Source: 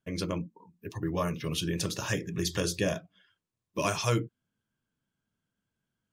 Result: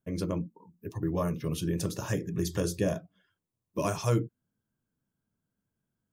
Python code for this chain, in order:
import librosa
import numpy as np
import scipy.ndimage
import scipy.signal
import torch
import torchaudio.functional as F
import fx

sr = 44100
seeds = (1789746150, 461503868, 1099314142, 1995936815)

y = fx.peak_eq(x, sr, hz=3100.0, db=-11.5, octaves=2.5)
y = F.gain(torch.from_numpy(y), 2.0).numpy()